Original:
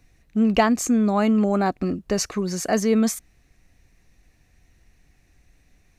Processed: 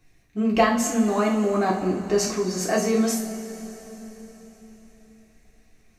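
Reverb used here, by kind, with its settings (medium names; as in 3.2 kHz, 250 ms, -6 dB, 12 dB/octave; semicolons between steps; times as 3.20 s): two-slope reverb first 0.39 s, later 4.3 s, from -18 dB, DRR -5 dB; trim -5.5 dB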